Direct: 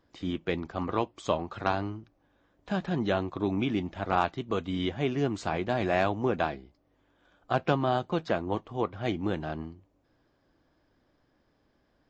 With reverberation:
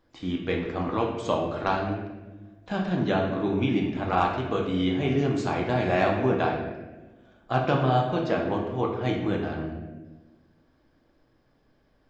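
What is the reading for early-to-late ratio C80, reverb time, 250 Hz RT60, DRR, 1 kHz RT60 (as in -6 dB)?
6.5 dB, 1.2 s, 1.7 s, -0.5 dB, 1.0 s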